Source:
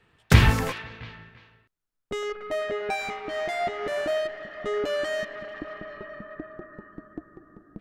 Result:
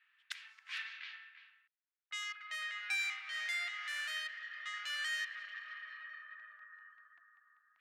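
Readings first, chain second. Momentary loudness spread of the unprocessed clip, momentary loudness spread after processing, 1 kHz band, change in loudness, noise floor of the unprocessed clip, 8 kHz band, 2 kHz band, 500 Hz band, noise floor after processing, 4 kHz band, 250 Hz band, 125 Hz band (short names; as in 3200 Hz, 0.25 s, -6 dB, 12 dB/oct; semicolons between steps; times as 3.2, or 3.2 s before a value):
22 LU, 17 LU, -18.5 dB, -13.0 dB, -78 dBFS, -9.0 dB, -6.0 dB, under -40 dB, under -85 dBFS, -6.0 dB, under -40 dB, under -40 dB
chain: flipped gate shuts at -14 dBFS, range -26 dB; inverse Chebyshev high-pass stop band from 470 Hz, stop band 60 dB; low-pass opened by the level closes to 2300 Hz, open at -36.5 dBFS; gain -1.5 dB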